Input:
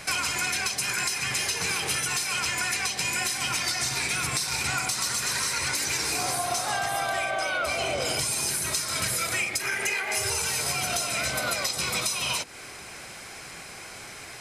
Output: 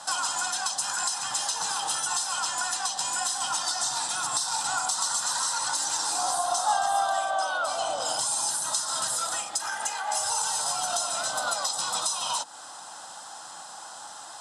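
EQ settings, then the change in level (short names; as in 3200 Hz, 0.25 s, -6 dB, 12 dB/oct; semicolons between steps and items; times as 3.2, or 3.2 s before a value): speaker cabinet 320–9800 Hz, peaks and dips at 340 Hz +8 dB, 860 Hz +10 dB, 1300 Hz +3 dB, 3400 Hz +7 dB, 7800 Hz +6 dB; fixed phaser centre 940 Hz, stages 4; 0.0 dB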